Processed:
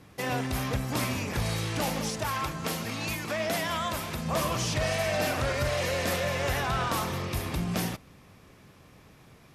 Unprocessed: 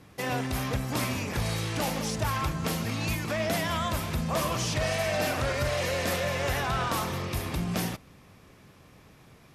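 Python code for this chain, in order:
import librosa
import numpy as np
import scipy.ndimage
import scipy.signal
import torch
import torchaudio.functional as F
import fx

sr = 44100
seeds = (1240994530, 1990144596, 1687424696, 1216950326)

y = fx.low_shelf(x, sr, hz=160.0, db=-10.0, at=(2.09, 4.26))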